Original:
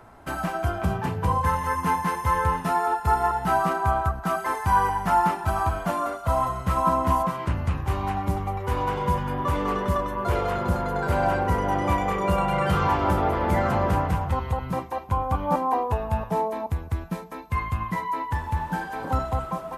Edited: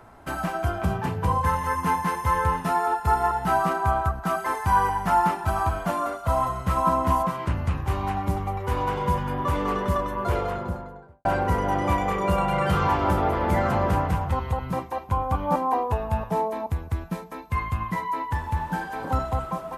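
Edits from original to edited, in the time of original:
0:10.19–0:11.25: fade out and dull

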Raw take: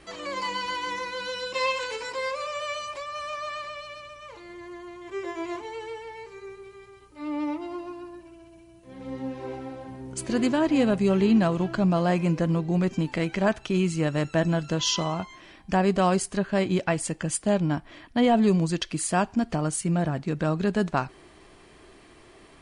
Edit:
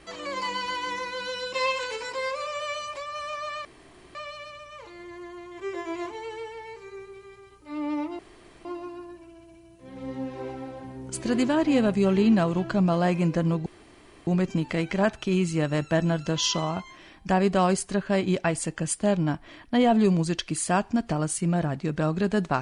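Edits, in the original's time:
0:03.65: splice in room tone 0.50 s
0:07.69: splice in room tone 0.46 s
0:12.70: splice in room tone 0.61 s

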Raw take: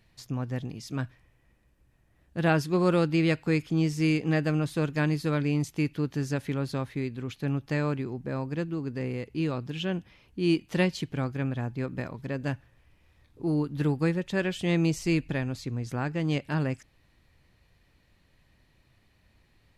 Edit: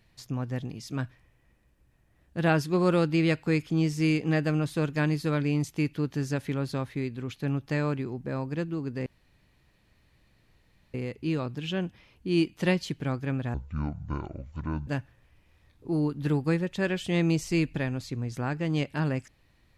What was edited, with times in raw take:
0:09.06: splice in room tone 1.88 s
0:11.66–0:12.42: play speed 57%

